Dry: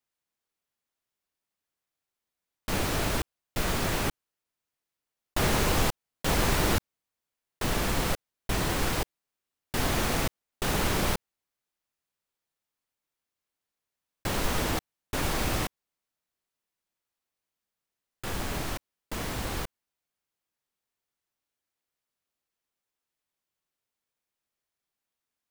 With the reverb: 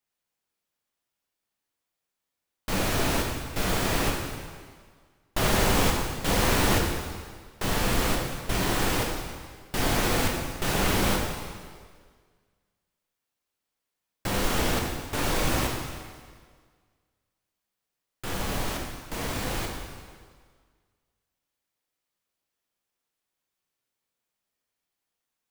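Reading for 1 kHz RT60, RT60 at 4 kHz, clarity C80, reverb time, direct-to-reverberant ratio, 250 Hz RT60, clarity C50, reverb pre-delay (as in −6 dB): 1.7 s, 1.6 s, 4.0 dB, 1.8 s, 0.0 dB, 1.7 s, 2.5 dB, 4 ms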